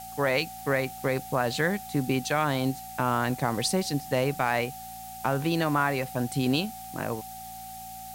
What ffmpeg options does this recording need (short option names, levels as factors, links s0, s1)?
-af "bandreject=f=57.3:t=h:w=4,bandreject=f=114.6:t=h:w=4,bandreject=f=171.9:t=h:w=4,bandreject=f=229.2:t=h:w=4,bandreject=f=760:w=30,afftdn=nr=30:nf=-41"